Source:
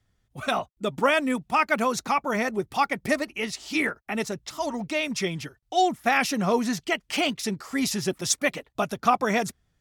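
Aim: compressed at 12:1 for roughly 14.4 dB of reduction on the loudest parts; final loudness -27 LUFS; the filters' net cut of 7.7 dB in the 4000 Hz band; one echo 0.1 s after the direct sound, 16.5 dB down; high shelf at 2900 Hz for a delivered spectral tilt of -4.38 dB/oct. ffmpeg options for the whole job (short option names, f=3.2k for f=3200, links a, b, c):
-af "highshelf=f=2.9k:g=-4.5,equalizer=f=4k:t=o:g=-7,acompressor=threshold=-31dB:ratio=12,aecho=1:1:100:0.15,volume=9.5dB"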